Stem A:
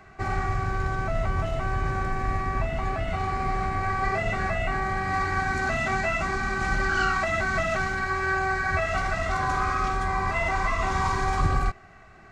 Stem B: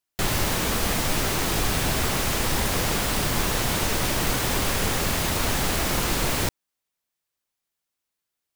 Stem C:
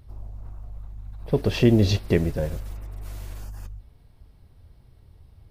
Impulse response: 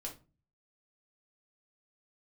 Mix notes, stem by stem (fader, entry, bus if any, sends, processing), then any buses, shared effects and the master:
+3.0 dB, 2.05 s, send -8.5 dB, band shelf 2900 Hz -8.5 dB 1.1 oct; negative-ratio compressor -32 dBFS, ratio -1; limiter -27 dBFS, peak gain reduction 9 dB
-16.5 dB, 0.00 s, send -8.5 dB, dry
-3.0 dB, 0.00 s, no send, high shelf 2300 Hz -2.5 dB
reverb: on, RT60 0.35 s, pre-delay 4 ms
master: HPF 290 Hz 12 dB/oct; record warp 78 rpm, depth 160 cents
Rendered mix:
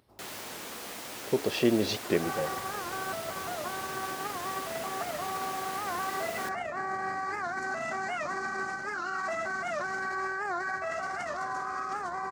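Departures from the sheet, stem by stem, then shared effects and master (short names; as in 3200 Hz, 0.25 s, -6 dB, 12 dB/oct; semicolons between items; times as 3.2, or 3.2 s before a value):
stem A: send off; stem C: missing high shelf 2300 Hz -2.5 dB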